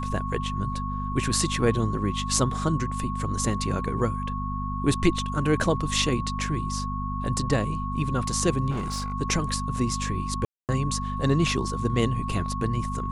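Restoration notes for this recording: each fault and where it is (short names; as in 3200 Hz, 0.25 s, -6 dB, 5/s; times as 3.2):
hum 50 Hz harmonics 5 -31 dBFS
tone 1100 Hz -32 dBFS
8.7–9.14 clipped -25 dBFS
10.45–10.69 gap 0.238 s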